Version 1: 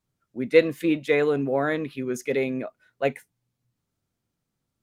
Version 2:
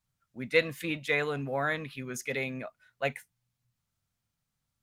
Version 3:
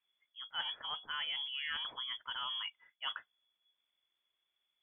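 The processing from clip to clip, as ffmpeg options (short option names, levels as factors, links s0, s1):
-af "equalizer=f=350:t=o:w=1.5:g=-14"
-af "areverse,acompressor=threshold=0.0158:ratio=12,areverse,lowpass=f=3000:t=q:w=0.5098,lowpass=f=3000:t=q:w=0.6013,lowpass=f=3000:t=q:w=0.9,lowpass=f=3000:t=q:w=2.563,afreqshift=-3500"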